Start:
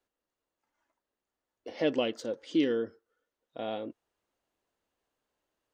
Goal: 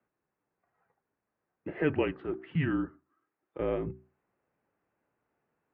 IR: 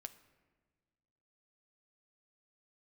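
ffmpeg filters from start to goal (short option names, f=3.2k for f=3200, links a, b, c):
-filter_complex "[0:a]bandreject=f=60:t=h:w=6,bandreject=f=120:t=h:w=6,bandreject=f=180:t=h:w=6,bandreject=f=240:t=h:w=6,bandreject=f=300:t=h:w=6,bandreject=f=360:t=h:w=6,bandreject=f=420:t=h:w=6,bandreject=f=480:t=h:w=6,bandreject=f=540:t=h:w=6,highpass=f=230:t=q:w=0.5412,highpass=f=230:t=q:w=1.307,lowpass=f=2.4k:t=q:w=0.5176,lowpass=f=2.4k:t=q:w=0.7071,lowpass=f=2.4k:t=q:w=1.932,afreqshift=-160,asettb=1/sr,asplit=3[a][b][c];[a]atrim=end=1.714[d];[b]atrim=start=1.71:end=3.6,asetpts=PTS-STARTPTS,afade=t=in:d=0.004:c=qsin,afade=t=out:st=1.886:d=0.004:c=qsin,lowshelf=f=290:g=-10[e];[c]atrim=start=3.596[f];[d][e]acrossfade=d=0.004:c1=hsin:c2=qsin[g];[g][f]acrossfade=d=0.004:c1=qsin:c2=hsin,volume=5.5dB"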